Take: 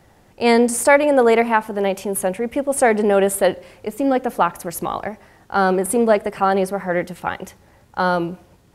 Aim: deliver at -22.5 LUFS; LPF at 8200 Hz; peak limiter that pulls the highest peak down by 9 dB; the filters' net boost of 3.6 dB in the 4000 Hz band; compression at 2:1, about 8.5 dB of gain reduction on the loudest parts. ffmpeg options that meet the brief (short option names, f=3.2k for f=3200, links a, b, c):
-af "lowpass=8.2k,equalizer=f=4k:t=o:g=5,acompressor=threshold=-25dB:ratio=2,volume=6.5dB,alimiter=limit=-12.5dB:level=0:latency=1"